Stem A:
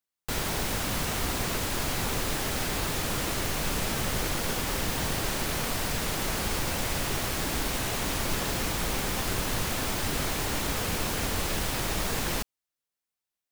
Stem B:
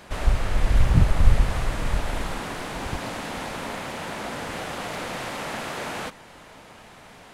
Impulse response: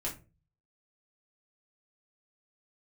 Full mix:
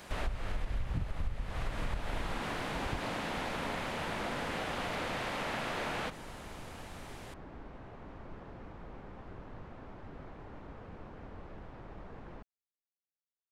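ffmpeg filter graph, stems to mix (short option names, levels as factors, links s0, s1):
-filter_complex "[0:a]lowpass=1200,volume=0.158[s0];[1:a]acrossover=split=4100[s1][s2];[s2]acompressor=threshold=0.00141:ratio=4:attack=1:release=60[s3];[s1][s3]amix=inputs=2:normalize=0,highshelf=f=4300:g=7.5,volume=0.596[s4];[s0][s4]amix=inputs=2:normalize=0,acompressor=threshold=0.0316:ratio=12"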